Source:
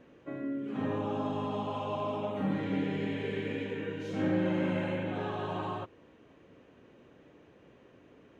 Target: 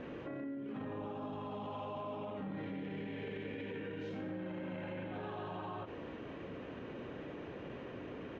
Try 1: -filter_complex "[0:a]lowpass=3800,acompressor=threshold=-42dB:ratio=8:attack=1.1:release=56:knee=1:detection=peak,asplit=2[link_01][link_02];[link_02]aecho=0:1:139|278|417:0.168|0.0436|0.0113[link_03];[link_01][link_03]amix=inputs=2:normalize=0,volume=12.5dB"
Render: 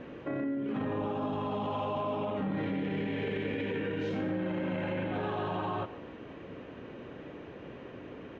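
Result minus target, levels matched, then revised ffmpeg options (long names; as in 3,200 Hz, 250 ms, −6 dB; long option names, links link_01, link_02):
downward compressor: peak gain reduction −9 dB
-filter_complex "[0:a]lowpass=3800,acompressor=threshold=-52.5dB:ratio=8:attack=1.1:release=56:knee=1:detection=peak,asplit=2[link_01][link_02];[link_02]aecho=0:1:139|278|417:0.168|0.0436|0.0113[link_03];[link_01][link_03]amix=inputs=2:normalize=0,volume=12.5dB"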